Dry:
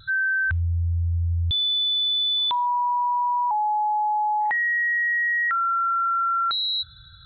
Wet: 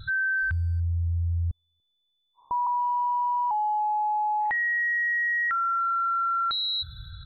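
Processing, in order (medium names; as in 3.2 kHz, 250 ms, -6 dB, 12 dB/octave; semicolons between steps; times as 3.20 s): 1.07–2.67 s: elliptic low-pass 1.1 kHz, stop band 50 dB; bass shelf 190 Hz +11 dB; peak limiter -22.5 dBFS, peak gain reduction 12.5 dB; speakerphone echo 290 ms, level -30 dB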